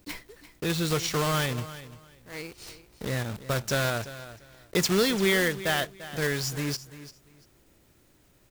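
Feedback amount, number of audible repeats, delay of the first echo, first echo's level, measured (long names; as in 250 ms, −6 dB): 21%, 2, 344 ms, −15.0 dB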